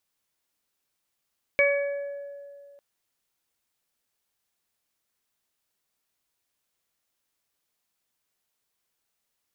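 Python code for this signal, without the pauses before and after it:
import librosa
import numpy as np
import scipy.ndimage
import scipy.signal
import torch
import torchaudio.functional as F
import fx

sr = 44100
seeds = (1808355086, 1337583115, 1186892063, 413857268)

y = fx.additive(sr, length_s=1.2, hz=566.0, level_db=-19.5, upper_db=(-17, -8.5, 2.0), decay_s=2.38, upper_decays_s=(0.84, 1.39, 0.72))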